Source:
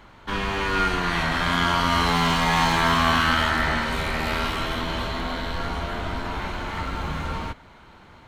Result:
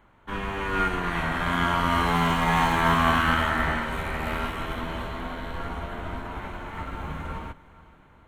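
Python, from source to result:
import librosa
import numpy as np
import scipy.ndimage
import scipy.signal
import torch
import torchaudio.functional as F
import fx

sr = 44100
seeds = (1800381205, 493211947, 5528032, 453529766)

y = fx.peak_eq(x, sr, hz=4800.0, db=-14.0, octaves=0.9)
y = fx.echo_diffused(y, sr, ms=450, feedback_pct=48, wet_db=-15.0)
y = fx.upward_expand(y, sr, threshold_db=-37.0, expansion=1.5)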